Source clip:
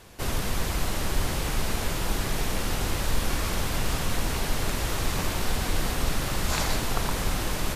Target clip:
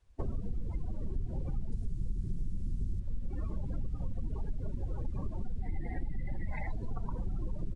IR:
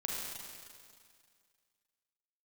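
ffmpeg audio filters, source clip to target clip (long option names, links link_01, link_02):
-filter_complex "[0:a]asettb=1/sr,asplit=3[link_01][link_02][link_03];[link_01]atrim=end=5.604[link_04];[link_02]atrim=start=5.6:end=6.67,asetpts=PTS-STARTPTS,afade=type=in:duration=0.004:curve=qsin,afade=type=out:start_time=1.066:duration=0.004:curve=qsin,equalizer=frequency=800:width_type=o:width=0.33:gain=3,equalizer=frequency=1250:width_type=o:width=0.33:gain=-9,equalizer=frequency=2000:width_type=o:width=0.33:gain=8,equalizer=frequency=6300:width_type=o:width=0.33:gain=-9[link_05];[link_03]atrim=start=6.666[link_06];[link_04][link_05]acrossfade=duration=0.004:curve1=hsin:curve2=qsin[link_07];[link_07][link_06]acrossfade=duration=0.004:curve1=qsin:curve2=hsin,aecho=1:1:68|136|204|272|340|408|476:0.299|0.179|0.107|0.0645|0.0387|0.0232|0.0139,aresample=22050,aresample=44100,asplit=2[link_08][link_09];[link_09]asoftclip=type=hard:threshold=-20.5dB,volume=-5dB[link_10];[link_08][link_10]amix=inputs=2:normalize=0,asettb=1/sr,asplit=3[link_11][link_12][link_13];[link_11]atrim=end=1.724[link_14];[link_12]atrim=start=1.72:end=3,asetpts=PTS-STARTPTS,afade=type=in:duration=0.004:curve=qsin,afade=type=out:start_time=1.276:duration=0.004:curve=qsin,bass=frequency=250:gain=6,treble=frequency=4000:gain=11[link_15];[link_13]atrim=start=2.996[link_16];[link_14][link_15]acrossfade=duration=0.004:curve1=hsin:curve2=qsin[link_17];[link_17][link_16]acrossfade=duration=0.004:curve1=qsin:curve2=hsin,acompressor=threshold=-30dB:ratio=8,afftdn=noise_reduction=34:noise_floor=-30,volume=1dB"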